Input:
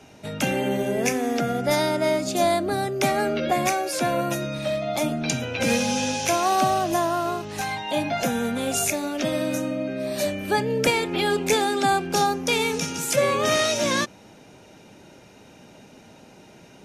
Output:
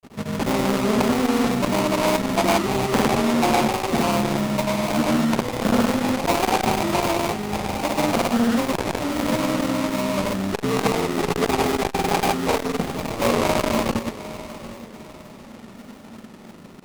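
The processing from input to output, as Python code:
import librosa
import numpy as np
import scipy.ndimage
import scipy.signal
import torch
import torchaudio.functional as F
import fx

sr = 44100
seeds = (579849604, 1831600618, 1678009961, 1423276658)

y = fx.peak_eq(x, sr, hz=220.0, db=11.0, octaves=0.32)
y = fx.sample_hold(y, sr, seeds[0], rate_hz=1600.0, jitter_pct=20)
y = fx.granulator(y, sr, seeds[1], grain_ms=100.0, per_s=20.0, spray_ms=100.0, spread_st=0)
y = fx.echo_feedback(y, sr, ms=755, feedback_pct=36, wet_db=-17.5)
y = fx.transformer_sat(y, sr, knee_hz=610.0)
y = y * 10.0 ** (4.5 / 20.0)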